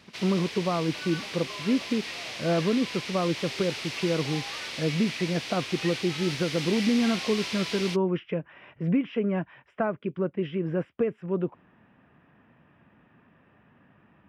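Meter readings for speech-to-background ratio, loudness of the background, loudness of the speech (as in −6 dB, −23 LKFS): 5.5 dB, −34.0 LKFS, −28.5 LKFS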